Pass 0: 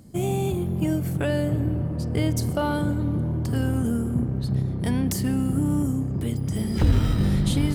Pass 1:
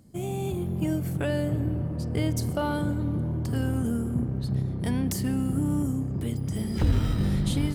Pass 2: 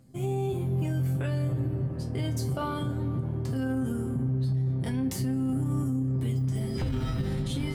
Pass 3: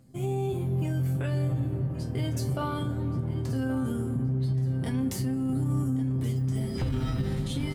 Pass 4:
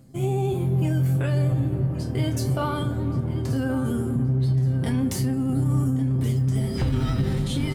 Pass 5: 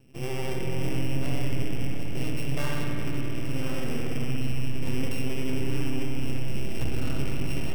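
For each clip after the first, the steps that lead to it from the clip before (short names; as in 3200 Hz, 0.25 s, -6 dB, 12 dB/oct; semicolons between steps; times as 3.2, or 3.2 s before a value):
AGC gain up to 4 dB; gain -7 dB
high shelf 7700 Hz -5 dB; resonator 130 Hz, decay 0.22 s, harmonics all, mix 90%; limiter -29.5 dBFS, peak gain reduction 9 dB; gain +8 dB
feedback echo 1.126 s, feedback 33%, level -14 dB
reverse; upward compressor, threshold -36 dBFS; reverse; vibrato 11 Hz 32 cents; doubler 29 ms -11 dB; gain +5 dB
sample sorter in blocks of 16 samples; half-wave rectifier; spring tank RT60 3.3 s, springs 58 ms, chirp 40 ms, DRR 0.5 dB; gain -4 dB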